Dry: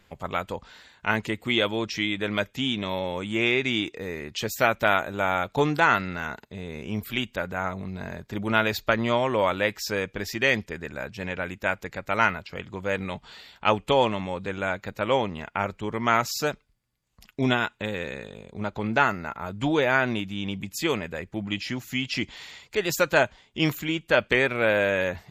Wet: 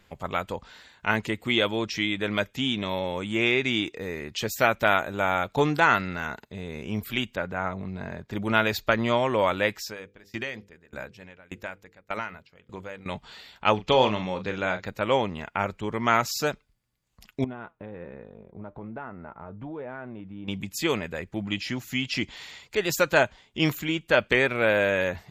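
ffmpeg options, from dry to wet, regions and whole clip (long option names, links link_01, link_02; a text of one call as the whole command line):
ffmpeg -i in.wav -filter_complex "[0:a]asettb=1/sr,asplit=3[link_01][link_02][link_03];[link_01]atrim=end=7.354[link_04];[link_02]atrim=start=7.35:end=8.31,asetpts=PTS-STARTPTS,afade=type=in:duration=0.004:curve=qsin,afade=type=out:start_time=0.956:duration=0.004:curve=qsin,highpass=57,aemphasis=mode=reproduction:type=50kf[link_05];[link_03]atrim=start=8.306[link_06];[link_04][link_05]acrossfade=duration=0.004:curve1=hsin:curve2=qsin[link_07];[link_07][link_06]acrossfade=duration=0.004:curve1=qsin:curve2=hsin,asettb=1/sr,asplit=3[link_08][link_09][link_10];[link_08]atrim=end=9.754[link_11];[link_09]atrim=start=9.75:end=13.06,asetpts=PTS-STARTPTS,afade=type=in:duration=0.004:curve=qsin,afade=type=out:start_time=3.306:duration=0.004:curve=qsin,bandreject=frequency=50:width_type=h:width=6,bandreject=frequency=100:width_type=h:width=6,bandreject=frequency=150:width_type=h:width=6,bandreject=frequency=200:width_type=h:width=6,bandreject=frequency=250:width_type=h:width=6,bandreject=frequency=300:width_type=h:width=6,bandreject=frequency=350:width_type=h:width=6,bandreject=frequency=400:width_type=h:width=6,bandreject=frequency=450:width_type=h:width=6,bandreject=frequency=500:width_type=h:width=6,acompressor=threshold=-24dB:ratio=3:attack=3.2:release=140:knee=1:detection=peak,aeval=exprs='val(0)*pow(10,-25*if(lt(mod(1.7*n/s,1),2*abs(1.7)/1000),1-mod(1.7*n/s,1)/(2*abs(1.7)/1000),(mod(1.7*n/s,1)-2*abs(1.7)/1000)/(1-2*abs(1.7)/1000))/20)':channel_layout=same[link_12];[link_10]atrim=start=13.056[link_13];[link_11][link_12]acrossfade=duration=0.004:curve1=hsin:curve2=qsin[link_14];[link_14][link_13]acrossfade=duration=0.004:curve1=qsin:curve2=hsin,asettb=1/sr,asplit=3[link_15][link_16][link_17];[link_15]atrim=end=13.744[link_18];[link_16]atrim=start=13.74:end=14.85,asetpts=PTS-STARTPTS,afade=type=in:duration=0.004:curve=qsin,afade=type=out:start_time=1.106:duration=0.004:curve=qsin,highshelf=frequency=7200:width_type=q:width=3:gain=-10,asplit=2[link_19][link_20];[link_20]adelay=38,volume=-9dB[link_21];[link_19][link_21]amix=inputs=2:normalize=0,atrim=end_sample=48951[link_22];[link_17]atrim=start=14.846[link_23];[link_18][link_22]acrossfade=duration=0.004:curve1=hsin:curve2=qsin[link_24];[link_24][link_23]acrossfade=duration=0.004:curve1=qsin:curve2=hsin,asettb=1/sr,asplit=3[link_25][link_26][link_27];[link_25]atrim=end=17.444[link_28];[link_26]atrim=start=17.44:end=20.48,asetpts=PTS-STARTPTS,afade=type=in:duration=0.004:curve=qsin,afade=type=out:start_time=3.036:duration=0.004:curve=qsin,lowpass=1100,acompressor=threshold=-31dB:ratio=3:attack=3.2:release=140:knee=1:detection=peak,flanger=delay=4:depth=2.7:regen=79:speed=1.2:shape=sinusoidal[link_29];[link_27]atrim=start=20.476[link_30];[link_28][link_29]acrossfade=duration=0.004:curve1=hsin:curve2=qsin[link_31];[link_31][link_30]acrossfade=duration=0.004:curve1=qsin:curve2=hsin" out.wav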